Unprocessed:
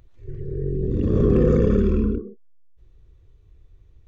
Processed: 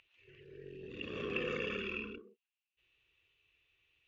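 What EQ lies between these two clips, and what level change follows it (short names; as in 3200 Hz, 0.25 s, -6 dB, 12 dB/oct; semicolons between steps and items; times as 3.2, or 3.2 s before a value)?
band-pass 2700 Hz, Q 8.3; +15.0 dB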